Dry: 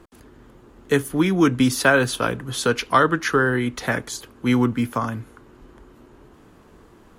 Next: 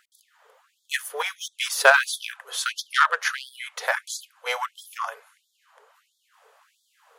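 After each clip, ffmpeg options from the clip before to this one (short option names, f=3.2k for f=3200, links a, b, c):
-af "aeval=exprs='0.75*(cos(1*acos(clip(val(0)/0.75,-1,1)))-cos(1*PI/2))+0.0422*(cos(7*acos(clip(val(0)/0.75,-1,1)))-cos(7*PI/2))':c=same,afftfilt=real='re*gte(b*sr/1024,400*pow(3300/400,0.5+0.5*sin(2*PI*1.5*pts/sr)))':imag='im*gte(b*sr/1024,400*pow(3300/400,0.5+0.5*sin(2*PI*1.5*pts/sr)))':win_size=1024:overlap=0.75,volume=3dB"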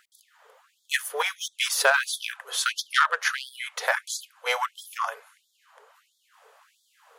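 -af "alimiter=limit=-9dB:level=0:latency=1:release=386,volume=1.5dB"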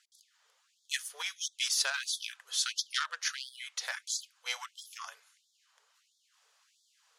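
-af "bandpass=f=5.5k:t=q:w=1.4:csg=0"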